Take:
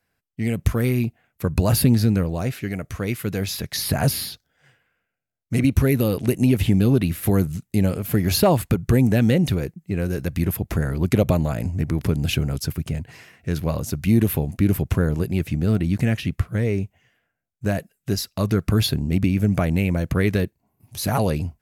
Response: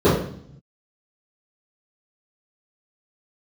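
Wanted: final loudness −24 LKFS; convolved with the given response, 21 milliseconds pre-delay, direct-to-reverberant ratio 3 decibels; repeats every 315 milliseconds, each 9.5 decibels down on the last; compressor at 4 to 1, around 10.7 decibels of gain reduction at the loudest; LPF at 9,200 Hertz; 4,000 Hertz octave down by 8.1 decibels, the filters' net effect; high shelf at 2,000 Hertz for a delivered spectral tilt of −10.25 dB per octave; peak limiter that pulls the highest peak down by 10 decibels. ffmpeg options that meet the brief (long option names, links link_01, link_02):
-filter_complex "[0:a]lowpass=9200,highshelf=frequency=2000:gain=-3.5,equalizer=frequency=4000:width_type=o:gain=-6.5,acompressor=threshold=-26dB:ratio=4,alimiter=level_in=0.5dB:limit=-24dB:level=0:latency=1,volume=-0.5dB,aecho=1:1:315|630|945|1260:0.335|0.111|0.0365|0.012,asplit=2[link_01][link_02];[1:a]atrim=start_sample=2205,adelay=21[link_03];[link_02][link_03]afir=irnorm=-1:irlink=0,volume=-28dB[link_04];[link_01][link_04]amix=inputs=2:normalize=0,volume=3.5dB"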